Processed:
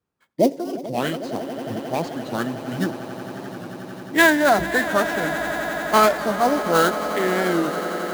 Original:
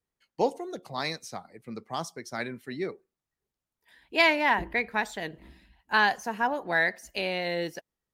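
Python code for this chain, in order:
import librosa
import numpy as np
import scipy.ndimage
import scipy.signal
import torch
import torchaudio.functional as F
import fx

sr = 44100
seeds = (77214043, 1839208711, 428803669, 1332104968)

p1 = scipy.signal.sosfilt(scipy.signal.butter(2, 82.0, 'highpass', fs=sr, output='sos'), x)
p2 = fx.high_shelf(p1, sr, hz=4900.0, db=-8.5)
p3 = fx.sample_hold(p2, sr, seeds[0], rate_hz=7200.0, jitter_pct=20)
p4 = p2 + (p3 * librosa.db_to_amplitude(-4.0))
p5 = fx.formant_shift(p4, sr, semitones=-5)
p6 = fx.echo_swell(p5, sr, ms=89, loudest=8, wet_db=-16.5)
p7 = fx.record_warp(p6, sr, rpm=45.0, depth_cents=100.0)
y = p7 * librosa.db_to_amplitude(4.5)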